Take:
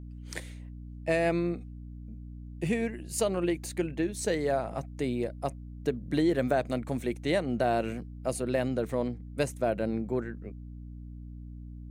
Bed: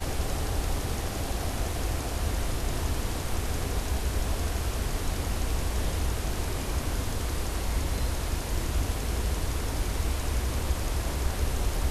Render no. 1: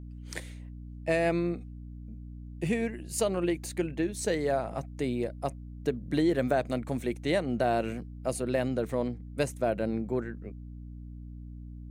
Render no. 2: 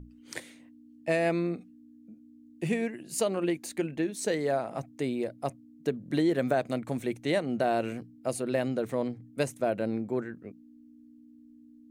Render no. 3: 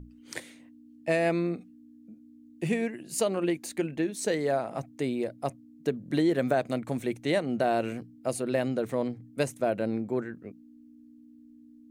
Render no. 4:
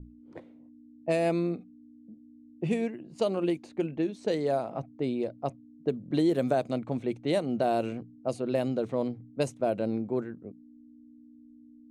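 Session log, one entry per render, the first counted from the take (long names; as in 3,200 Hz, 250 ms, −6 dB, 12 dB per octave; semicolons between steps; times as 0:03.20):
no processing that can be heard
mains-hum notches 60/120/180 Hz
level +1 dB
low-pass that shuts in the quiet parts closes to 550 Hz, open at −22 dBFS; parametric band 1,800 Hz −9 dB 0.77 octaves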